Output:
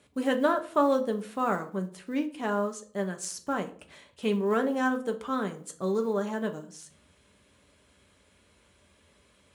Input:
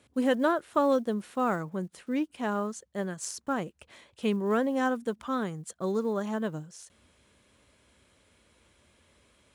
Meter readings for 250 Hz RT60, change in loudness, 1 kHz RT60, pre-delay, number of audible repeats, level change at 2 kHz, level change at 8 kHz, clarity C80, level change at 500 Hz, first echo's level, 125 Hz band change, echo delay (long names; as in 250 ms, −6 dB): 0.60 s, +0.5 dB, 0.45 s, 5 ms, no echo audible, +1.5 dB, +0.5 dB, 19.5 dB, +1.0 dB, no echo audible, −0.5 dB, no echo audible